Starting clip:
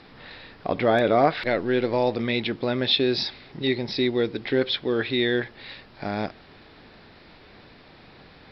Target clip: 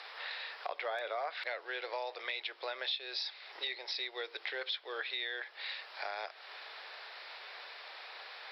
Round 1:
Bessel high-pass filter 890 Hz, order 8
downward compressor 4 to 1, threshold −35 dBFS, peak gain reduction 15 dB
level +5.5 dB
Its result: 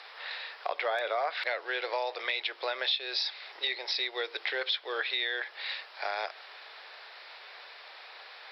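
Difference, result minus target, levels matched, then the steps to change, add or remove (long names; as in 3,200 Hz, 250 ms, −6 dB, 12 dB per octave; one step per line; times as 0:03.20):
downward compressor: peak gain reduction −7 dB
change: downward compressor 4 to 1, threshold −44 dBFS, peak gain reduction 22 dB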